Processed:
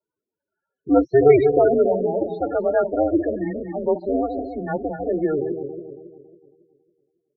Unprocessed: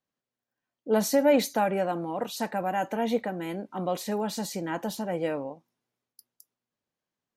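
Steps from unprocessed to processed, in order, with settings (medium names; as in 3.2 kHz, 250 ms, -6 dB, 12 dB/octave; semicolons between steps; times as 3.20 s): backward echo that repeats 138 ms, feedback 64%, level -6 dB; loudest bins only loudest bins 16; mistuned SSB -150 Hz 390–2900 Hz; trim +9 dB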